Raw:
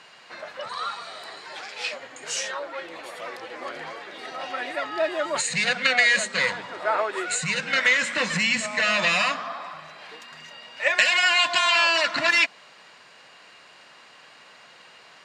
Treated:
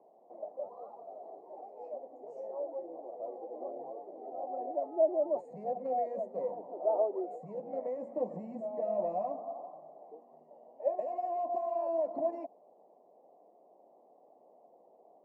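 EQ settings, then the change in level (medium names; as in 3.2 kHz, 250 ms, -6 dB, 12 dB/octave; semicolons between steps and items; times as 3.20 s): Bessel high-pass 370 Hz, order 4; elliptic low-pass 740 Hz, stop band 50 dB; 0.0 dB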